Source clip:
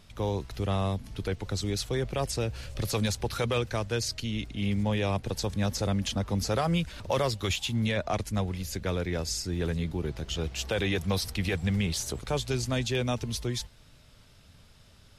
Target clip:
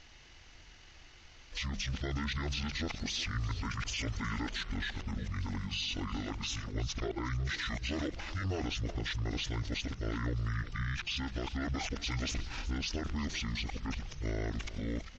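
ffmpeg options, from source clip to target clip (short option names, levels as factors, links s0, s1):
-af "areverse,lowpass=f=11000:w=0.5412,lowpass=f=11000:w=1.3066,aemphasis=mode=production:type=50kf,asetrate=24750,aresample=44100,atempo=1.7818,alimiter=level_in=1.5:limit=0.0631:level=0:latency=1:release=31,volume=0.668,bandreject=f=50:t=h:w=6,bandreject=f=100:t=h:w=6,bandreject=f=150:t=h:w=6,bandreject=f=200:t=h:w=6,aecho=1:1:363:0.158"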